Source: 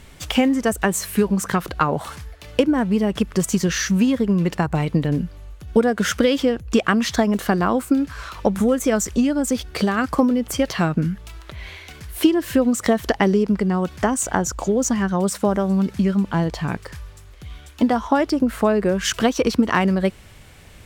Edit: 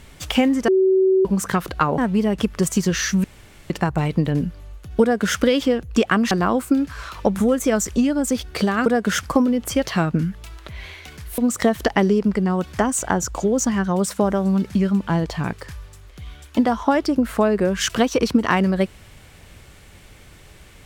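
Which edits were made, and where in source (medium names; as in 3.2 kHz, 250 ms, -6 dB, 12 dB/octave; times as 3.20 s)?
0.68–1.25 s: bleep 379 Hz -12.5 dBFS
1.98–2.75 s: delete
4.01–4.47 s: room tone
5.79–6.16 s: copy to 10.06 s
7.08–7.51 s: delete
12.21–12.62 s: delete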